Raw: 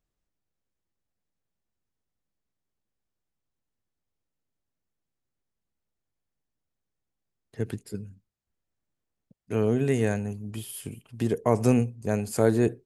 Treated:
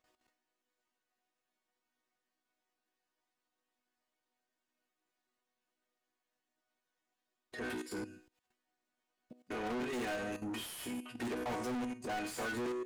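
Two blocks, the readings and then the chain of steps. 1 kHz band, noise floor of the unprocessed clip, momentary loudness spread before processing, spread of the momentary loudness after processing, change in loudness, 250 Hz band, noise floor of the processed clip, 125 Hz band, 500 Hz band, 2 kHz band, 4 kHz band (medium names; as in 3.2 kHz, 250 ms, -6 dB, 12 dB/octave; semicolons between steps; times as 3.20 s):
-5.0 dB, -85 dBFS, 15 LU, 7 LU, -13.0 dB, -12.0 dB, under -85 dBFS, -24.0 dB, -14.0 dB, -2.0 dB, 0.0 dB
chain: chord resonator B3 major, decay 0.35 s; level held to a coarse grid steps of 16 dB; overdrive pedal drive 42 dB, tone 2.7 kHz, clips at -35 dBFS; trim +4.5 dB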